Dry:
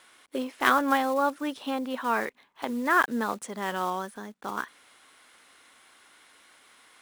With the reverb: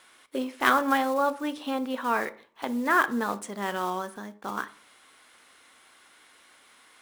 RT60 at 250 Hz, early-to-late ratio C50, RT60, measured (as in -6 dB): 0.50 s, 18.0 dB, 0.45 s